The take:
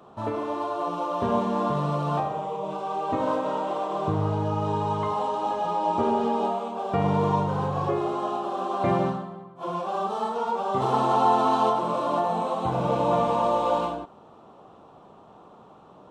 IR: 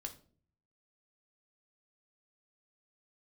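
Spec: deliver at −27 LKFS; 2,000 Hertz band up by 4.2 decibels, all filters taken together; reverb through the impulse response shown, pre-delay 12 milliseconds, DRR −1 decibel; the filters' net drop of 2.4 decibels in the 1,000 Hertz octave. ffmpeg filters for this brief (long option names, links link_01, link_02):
-filter_complex "[0:a]equalizer=frequency=1000:width_type=o:gain=-4.5,equalizer=frequency=2000:width_type=o:gain=7.5,asplit=2[link_01][link_02];[1:a]atrim=start_sample=2205,adelay=12[link_03];[link_02][link_03]afir=irnorm=-1:irlink=0,volume=4.5dB[link_04];[link_01][link_04]amix=inputs=2:normalize=0,volume=-4dB"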